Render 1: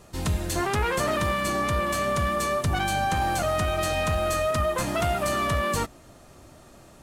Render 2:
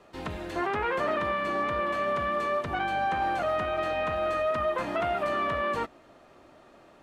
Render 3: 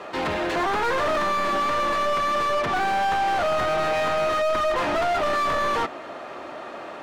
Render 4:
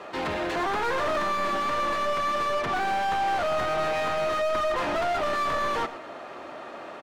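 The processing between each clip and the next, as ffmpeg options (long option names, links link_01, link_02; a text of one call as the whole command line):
ffmpeg -i in.wav -filter_complex "[0:a]acrossover=split=240 3800:gain=0.2 1 0.126[link_01][link_02][link_03];[link_01][link_02][link_03]amix=inputs=3:normalize=0,acrossover=split=2800[link_04][link_05];[link_05]acompressor=threshold=-46dB:ratio=4:attack=1:release=60[link_06];[link_04][link_06]amix=inputs=2:normalize=0,volume=-1.5dB" out.wav
ffmpeg -i in.wav -filter_complex "[0:a]asplit=2[link_01][link_02];[link_02]highpass=frequency=720:poles=1,volume=29dB,asoftclip=type=tanh:threshold=-16.5dB[link_03];[link_01][link_03]amix=inputs=2:normalize=0,lowpass=frequency=2200:poles=1,volume=-6dB" out.wav
ffmpeg -i in.wav -af "aecho=1:1:118:0.168,volume=-3.5dB" out.wav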